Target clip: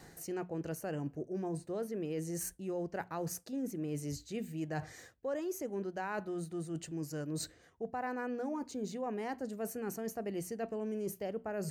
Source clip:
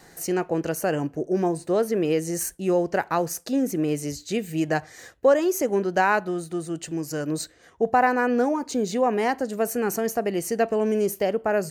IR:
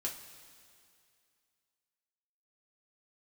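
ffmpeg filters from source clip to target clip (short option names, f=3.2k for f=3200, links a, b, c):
-af "equalizer=f=86:w=0.38:g=8.5,bandreject=f=60:t=h:w=6,bandreject=f=120:t=h:w=6,bandreject=f=180:t=h:w=6,bandreject=f=240:t=h:w=6,areverse,acompressor=threshold=-32dB:ratio=4,areverse,volume=-5.5dB"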